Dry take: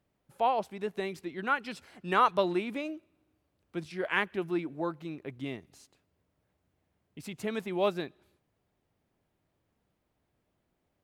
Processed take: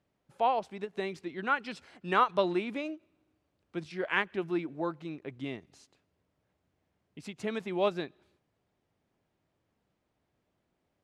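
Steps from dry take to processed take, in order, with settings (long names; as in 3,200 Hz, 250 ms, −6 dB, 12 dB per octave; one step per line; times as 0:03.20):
low-pass filter 7,300 Hz 12 dB per octave
low-shelf EQ 63 Hz −7 dB
every ending faded ahead of time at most 410 dB per second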